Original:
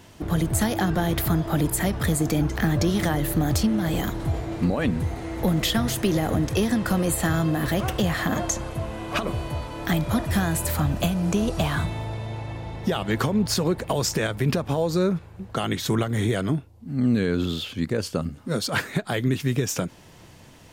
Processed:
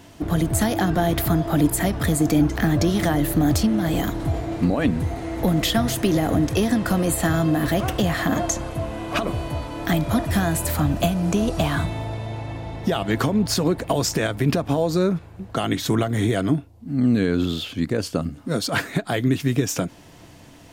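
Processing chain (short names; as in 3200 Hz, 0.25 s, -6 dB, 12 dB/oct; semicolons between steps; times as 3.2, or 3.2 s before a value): small resonant body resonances 290/680 Hz, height 8 dB, ringing for 90 ms; gain +1.5 dB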